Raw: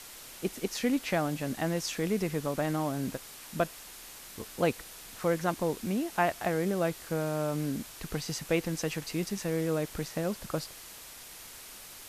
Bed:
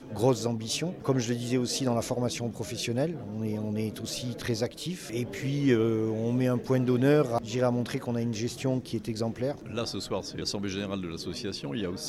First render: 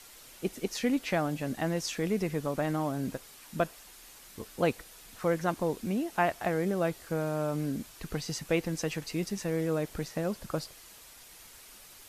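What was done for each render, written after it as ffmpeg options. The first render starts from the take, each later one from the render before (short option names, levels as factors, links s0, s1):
-af "afftdn=nr=6:nf=-48"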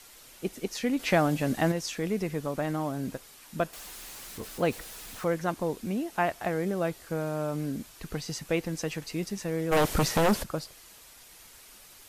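-filter_complex "[0:a]asettb=1/sr,asplit=3[s0][s1][s2];[s0]atrim=end=0.994[s3];[s1]atrim=start=0.99:end=1.72,asetpts=PTS-STARTPTS,afade=t=in:d=0.004:c=qsin,afade=t=out:st=0.726:d=0.004:c=qsin,acontrast=47[s4];[s2]atrim=start=1.716[s5];[s3][s4]acrossfade=d=0.004:c1=hsin:c2=qsin[s6];[s6][s5]acrossfade=d=0.004:c1=qsin:c2=hsin,asettb=1/sr,asplit=3[s7][s8][s9];[s7]atrim=end=3.734[s10];[s8]atrim=start=3.73:end=5.25,asetpts=PTS-STARTPTS,afade=t=in:d=0.004:c=qsin,afade=t=out:st=1.516:d=0.004:c=qsin,aeval=exprs='val(0)+0.5*0.00841*sgn(val(0))':c=same[s11];[s9]atrim=start=5.246[s12];[s10][s11]acrossfade=d=0.004:c1=hsin:c2=qsin[s13];[s13][s12]acrossfade=d=0.004:c1=qsin:c2=hsin,asplit=3[s14][s15][s16];[s14]afade=t=out:st=9.71:d=0.02[s17];[s15]aeval=exprs='0.119*sin(PI/2*3.55*val(0)/0.119)':c=same,afade=t=in:st=9.71:d=0.02,afade=t=out:st=10.42:d=0.02[s18];[s16]afade=t=in:st=10.42:d=0.02[s19];[s17][s18][s19]amix=inputs=3:normalize=0"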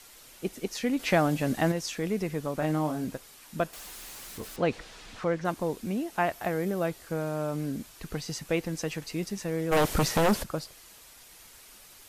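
-filter_complex "[0:a]asettb=1/sr,asplit=3[s0][s1][s2];[s0]atrim=end=2.594[s3];[s1]atrim=start=2.59:end=3.05,asetpts=PTS-STARTPTS,afade=t=in:d=0.004:c=qsin,afade=t=out:st=0.456:d=0.004:c=qsin,asplit=2[s4][s5];[s5]adelay=26,volume=0.562[s6];[s4][s6]amix=inputs=2:normalize=0,atrim=end_sample=20286[s7];[s2]atrim=start=3.046[s8];[s3][s7]acrossfade=d=0.004:c1=hsin:c2=qsin[s9];[s9][s8]acrossfade=d=0.004:c1=qsin:c2=hsin,asettb=1/sr,asplit=3[s10][s11][s12];[s10]atrim=end=4.564[s13];[s11]atrim=start=4.56:end=5.45,asetpts=PTS-STARTPTS,afade=t=in:d=0.004:c=qsin,afade=t=out:st=0.886:d=0.004:c=qsin,lowpass=5000[s14];[s12]atrim=start=5.446[s15];[s13][s14]acrossfade=d=0.004:c1=hsin:c2=qsin[s16];[s16][s15]acrossfade=d=0.004:c1=qsin:c2=hsin,asettb=1/sr,asplit=3[s17][s18][s19];[s17]atrim=end=6.324[s20];[s18]atrim=start=6.32:end=6.86,asetpts=PTS-STARTPTS,afade=t=in:d=0.004:c=qsin,afade=t=out:st=0.536:d=0.004:c=qsin,equalizer=f=13000:w=2.8:g=7[s21];[s19]atrim=start=6.856[s22];[s20][s21]acrossfade=d=0.004:c1=hsin:c2=qsin[s23];[s23][s22]acrossfade=d=0.004:c1=qsin:c2=hsin"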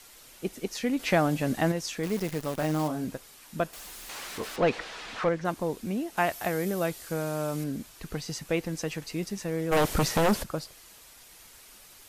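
-filter_complex "[0:a]asettb=1/sr,asplit=3[s0][s1][s2];[s0]atrim=end=2.034[s3];[s1]atrim=start=2.03:end=2.88,asetpts=PTS-STARTPTS,afade=t=in:d=0.004:c=qsin,afade=t=out:st=0.846:d=0.004:c=qsin,acrusher=bits=7:dc=4:mix=0:aa=0.000001[s4];[s2]atrim=start=2.876[s5];[s3][s4]acrossfade=d=0.004:c1=hsin:c2=qsin[s6];[s6][s5]acrossfade=d=0.004:c1=qsin:c2=hsin,asettb=1/sr,asplit=3[s7][s8][s9];[s7]atrim=end=4.094[s10];[s8]atrim=start=4.09:end=5.29,asetpts=PTS-STARTPTS,afade=t=in:d=0.004:c=qsin,afade=t=out:st=1.196:d=0.004:c=qsin,asplit=2[s11][s12];[s12]highpass=f=720:p=1,volume=7.08,asoftclip=type=tanh:threshold=0.188[s13];[s11][s13]amix=inputs=2:normalize=0,lowpass=f=2400:p=1,volume=0.501[s14];[s9]atrim=start=5.286[s15];[s10][s14]acrossfade=d=0.004:c1=hsin:c2=qsin[s16];[s16][s15]acrossfade=d=0.004:c1=qsin:c2=hsin,asettb=1/sr,asplit=3[s17][s18][s19];[s17]atrim=end=6.174[s20];[s18]atrim=start=6.17:end=7.64,asetpts=PTS-STARTPTS,afade=t=in:d=0.004:c=qsin,afade=t=out:st=1.466:d=0.004:c=qsin,highshelf=f=2900:g=8[s21];[s19]atrim=start=7.636[s22];[s20][s21]acrossfade=d=0.004:c1=hsin:c2=qsin[s23];[s23][s22]acrossfade=d=0.004:c1=qsin:c2=hsin"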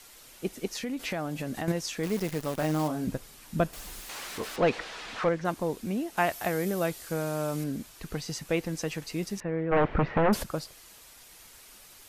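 -filter_complex "[0:a]asettb=1/sr,asplit=3[s0][s1][s2];[s0]atrim=end=0.824[s3];[s1]atrim=start=0.82:end=1.68,asetpts=PTS-STARTPTS,afade=t=in:d=0.004:c=qsin,afade=t=out:st=0.856:d=0.004:c=qsin,acompressor=threshold=0.0282:ratio=3:attack=3.2:release=140:knee=1:detection=peak[s4];[s2]atrim=start=1.676[s5];[s3][s4]acrossfade=d=0.004:c1=hsin:c2=qsin[s6];[s6][s5]acrossfade=d=0.004:c1=qsin:c2=hsin,asettb=1/sr,asplit=3[s7][s8][s9];[s7]atrim=end=3.074[s10];[s8]atrim=start=3.07:end=4.01,asetpts=PTS-STARTPTS,afade=t=in:d=0.004:c=qsin,afade=t=out:st=0.936:d=0.004:c=qsin,lowshelf=f=240:g=11[s11];[s9]atrim=start=4.006[s12];[s10][s11]acrossfade=d=0.004:c1=hsin:c2=qsin[s13];[s13][s12]acrossfade=d=0.004:c1=qsin:c2=hsin,asettb=1/sr,asplit=3[s14][s15][s16];[s14]atrim=end=9.404[s17];[s15]atrim=start=9.4:end=10.33,asetpts=PTS-STARTPTS,afade=t=in:d=0.004:c=qsin,afade=t=out:st=0.926:d=0.004:c=qsin,lowpass=f=2300:w=0.5412,lowpass=f=2300:w=1.3066[s18];[s16]atrim=start=10.326[s19];[s17][s18]acrossfade=d=0.004:c1=hsin:c2=qsin[s20];[s20][s19]acrossfade=d=0.004:c1=qsin:c2=hsin"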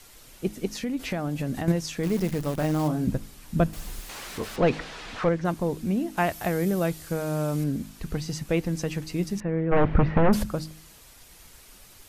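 -af "lowshelf=f=240:g=11,bandreject=f=52.4:t=h:w=4,bandreject=f=104.8:t=h:w=4,bandreject=f=157.2:t=h:w=4,bandreject=f=209.6:t=h:w=4,bandreject=f=262:t=h:w=4,bandreject=f=314.4:t=h:w=4"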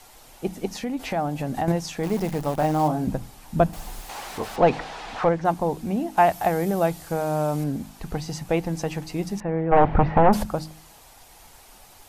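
-af "equalizer=f=800:t=o:w=0.69:g=12.5,bandreject=f=60:t=h:w=6,bandreject=f=120:t=h:w=6,bandreject=f=180:t=h:w=6"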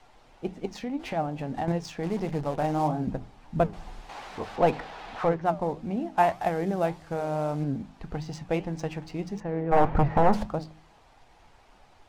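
-af "adynamicsmooth=sensitivity=7:basefreq=3100,flanger=delay=5.9:depth=6.2:regen=79:speed=1.7:shape=triangular"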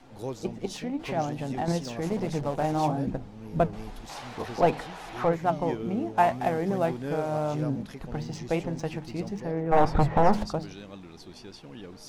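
-filter_complex "[1:a]volume=0.282[s0];[0:a][s0]amix=inputs=2:normalize=0"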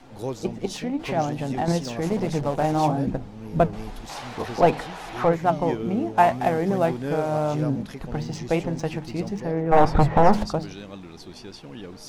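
-af "volume=1.68"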